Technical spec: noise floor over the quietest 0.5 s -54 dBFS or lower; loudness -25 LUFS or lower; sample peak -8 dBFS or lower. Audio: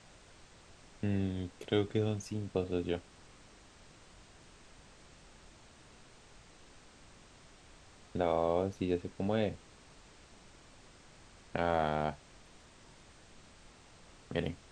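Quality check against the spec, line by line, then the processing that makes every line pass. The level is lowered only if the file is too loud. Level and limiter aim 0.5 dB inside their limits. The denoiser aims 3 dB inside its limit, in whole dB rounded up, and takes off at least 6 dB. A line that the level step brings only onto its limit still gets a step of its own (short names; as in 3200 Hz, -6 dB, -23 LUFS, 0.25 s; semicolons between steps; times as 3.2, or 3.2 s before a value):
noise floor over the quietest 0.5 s -58 dBFS: OK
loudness -35.0 LUFS: OK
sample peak -16.0 dBFS: OK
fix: none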